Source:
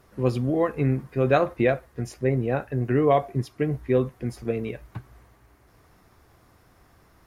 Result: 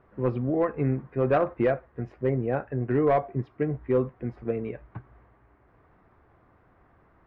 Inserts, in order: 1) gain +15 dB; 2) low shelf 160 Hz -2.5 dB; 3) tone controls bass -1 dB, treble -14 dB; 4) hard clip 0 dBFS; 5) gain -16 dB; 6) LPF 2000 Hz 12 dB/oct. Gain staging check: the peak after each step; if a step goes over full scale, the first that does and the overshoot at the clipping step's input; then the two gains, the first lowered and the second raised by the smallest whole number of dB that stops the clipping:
+7.5, +7.0, +6.5, 0.0, -16.0, -15.5 dBFS; step 1, 6.5 dB; step 1 +8 dB, step 5 -9 dB

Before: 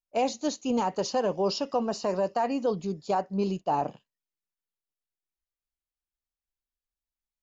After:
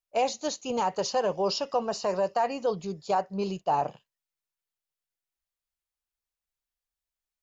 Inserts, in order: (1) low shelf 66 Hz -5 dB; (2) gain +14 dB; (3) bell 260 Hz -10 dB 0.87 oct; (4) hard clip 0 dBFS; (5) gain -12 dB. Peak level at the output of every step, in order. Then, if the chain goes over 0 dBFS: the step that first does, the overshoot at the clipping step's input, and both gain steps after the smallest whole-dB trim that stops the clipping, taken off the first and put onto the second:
-17.0, -3.0, -3.5, -3.5, -15.5 dBFS; no overload

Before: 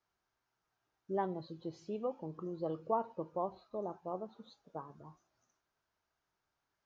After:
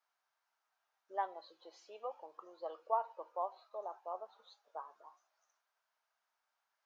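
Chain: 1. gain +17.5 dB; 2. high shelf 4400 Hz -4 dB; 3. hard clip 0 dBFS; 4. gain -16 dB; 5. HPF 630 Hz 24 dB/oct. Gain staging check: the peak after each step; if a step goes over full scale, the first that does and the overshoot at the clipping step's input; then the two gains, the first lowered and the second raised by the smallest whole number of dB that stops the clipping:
-2.0, -2.0, -2.0, -18.0, -19.5 dBFS; no overload

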